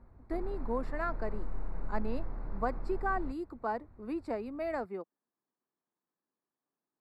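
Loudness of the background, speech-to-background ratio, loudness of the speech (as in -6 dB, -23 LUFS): -44.5 LUFS, 7.0 dB, -37.5 LUFS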